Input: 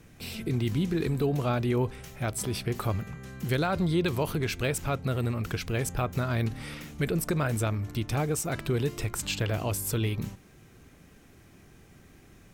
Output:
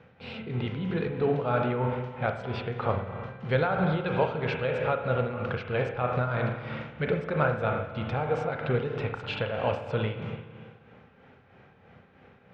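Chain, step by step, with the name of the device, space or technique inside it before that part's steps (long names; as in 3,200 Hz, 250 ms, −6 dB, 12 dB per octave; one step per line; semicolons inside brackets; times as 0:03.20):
combo amplifier with spring reverb and tremolo (spring reverb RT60 1.7 s, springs 32/54 ms, chirp 75 ms, DRR 2.5 dB; amplitude tremolo 3.1 Hz, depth 50%; loudspeaker in its box 99–3,400 Hz, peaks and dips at 320 Hz −10 dB, 510 Hz +10 dB, 840 Hz +8 dB, 1,400 Hz +6 dB)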